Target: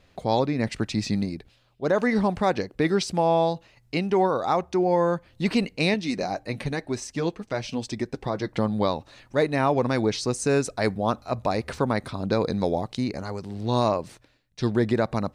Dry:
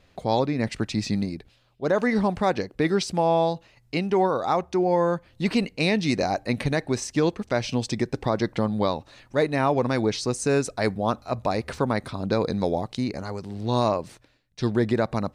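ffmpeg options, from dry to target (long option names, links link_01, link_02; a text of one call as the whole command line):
ffmpeg -i in.wav -filter_complex "[0:a]asettb=1/sr,asplit=3[link_01][link_02][link_03];[link_01]atrim=end=5.944[link_04];[link_02]atrim=start=5.94:end=8.54,asetpts=PTS-STARTPTS,afade=type=in:duration=0.004:curve=qsin,afade=type=out:start_time=2.596:duration=0.004:curve=qsin,flanger=delay=3:depth=3.6:regen=-49:speed=1:shape=sinusoidal[link_05];[link_03]atrim=start=8.536[link_06];[link_04][link_05]acrossfade=duration=0.004:curve1=hsin:curve2=qsin[link_07];[link_07][link_06]acrossfade=duration=0.004:curve1=qsin:curve2=hsin" out.wav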